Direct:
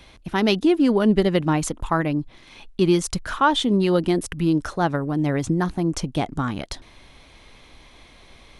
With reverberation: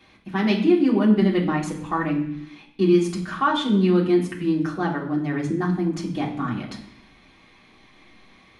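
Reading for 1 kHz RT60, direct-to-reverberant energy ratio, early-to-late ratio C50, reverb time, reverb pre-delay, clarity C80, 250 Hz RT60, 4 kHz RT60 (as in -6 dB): 0.70 s, -5.0 dB, 8.0 dB, 0.70 s, 3 ms, 11.0 dB, 0.90 s, 0.95 s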